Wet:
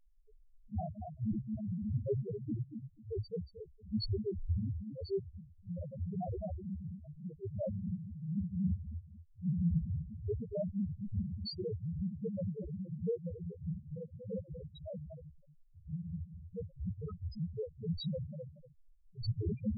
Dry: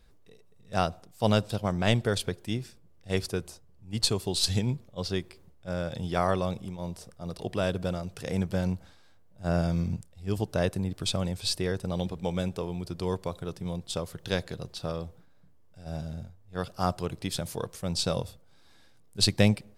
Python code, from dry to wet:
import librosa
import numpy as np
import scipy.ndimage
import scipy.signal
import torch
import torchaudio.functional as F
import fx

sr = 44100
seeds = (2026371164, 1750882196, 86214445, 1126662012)

y = fx.phase_scramble(x, sr, seeds[0], window_ms=50)
y = fx.echo_feedback(y, sr, ms=235, feedback_pct=21, wet_db=-10.0)
y = (np.mod(10.0 ** (15.5 / 20.0) * y + 1.0, 2.0) - 1.0) / 10.0 ** (15.5 / 20.0)
y = y + 10.0 ** (-12.0 / 20.0) * np.pad(y, (int(249 * sr / 1000.0), 0))[:len(y)]
y = fx.rotary_switch(y, sr, hz=0.7, then_hz=5.5, switch_at_s=6.45)
y = fx.fixed_phaser(y, sr, hz=1200.0, stages=6, at=(5.2, 5.93))
y = fx.spec_topn(y, sr, count=1)
y = F.gain(torch.from_numpy(y), 4.0).numpy()